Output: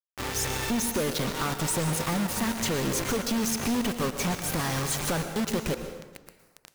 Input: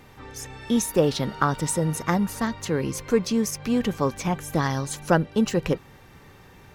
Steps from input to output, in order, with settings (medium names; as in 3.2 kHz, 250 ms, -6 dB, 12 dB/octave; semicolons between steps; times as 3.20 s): compression 16:1, threshold -30 dBFS, peak gain reduction 17 dB; companded quantiser 2-bit; plate-style reverb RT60 1.2 s, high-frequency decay 0.7×, pre-delay 100 ms, DRR 7.5 dB